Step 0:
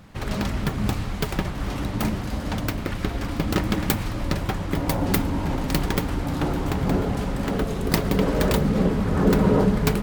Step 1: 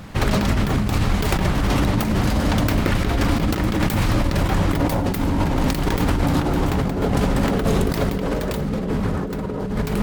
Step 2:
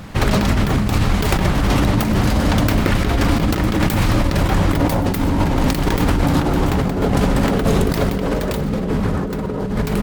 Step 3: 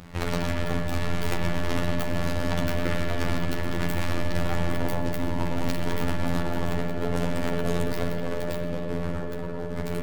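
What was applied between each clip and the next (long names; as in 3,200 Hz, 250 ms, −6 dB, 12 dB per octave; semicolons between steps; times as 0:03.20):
compressor whose output falls as the input rises −27 dBFS, ratio −1; level +7 dB
repeating echo 126 ms, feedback 39%, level −19 dB; level +3 dB
phases set to zero 86.2 Hz; spring reverb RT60 3.2 s, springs 53 ms, chirp 60 ms, DRR 1 dB; level −9 dB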